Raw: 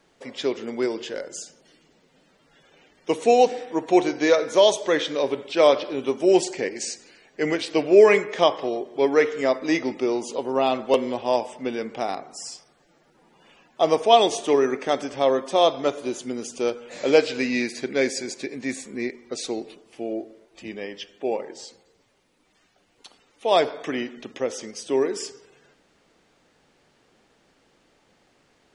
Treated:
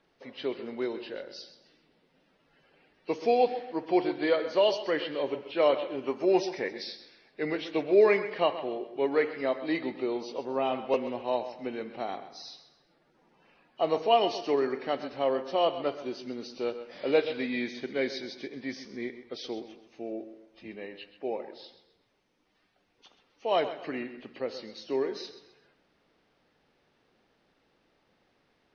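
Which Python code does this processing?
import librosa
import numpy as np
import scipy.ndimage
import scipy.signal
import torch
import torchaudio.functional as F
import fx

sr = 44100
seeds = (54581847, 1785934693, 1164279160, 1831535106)

p1 = fx.freq_compress(x, sr, knee_hz=2300.0, ratio=1.5)
p2 = fx.graphic_eq(p1, sr, hz=(1000, 2000, 4000, 8000), db=(5, 4, -6, 8), at=(6.07, 6.71))
p3 = p2 + fx.echo_feedback(p2, sr, ms=130, feedback_pct=34, wet_db=-13, dry=0)
y = F.gain(torch.from_numpy(p3), -7.5).numpy()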